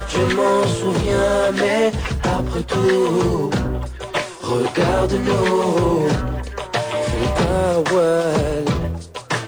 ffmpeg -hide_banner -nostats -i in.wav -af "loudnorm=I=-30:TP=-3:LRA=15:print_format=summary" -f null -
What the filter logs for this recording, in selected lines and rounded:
Input Integrated:    -19.1 LUFS
Input True Peak:      -5.9 dBTP
Input LRA:             1.6 LU
Input Threshold:     -29.1 LUFS